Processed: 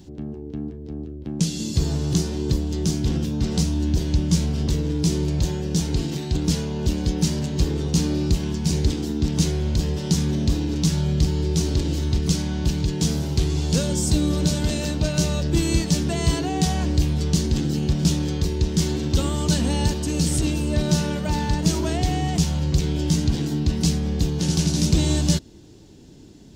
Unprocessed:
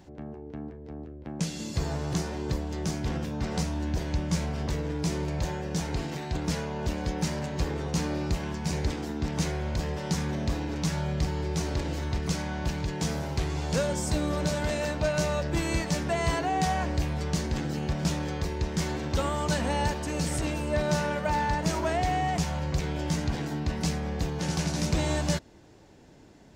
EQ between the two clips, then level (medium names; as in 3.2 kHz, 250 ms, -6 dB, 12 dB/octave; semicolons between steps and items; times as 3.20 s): high-order bell 1.1 kHz -11.5 dB 2.5 oct; +8.5 dB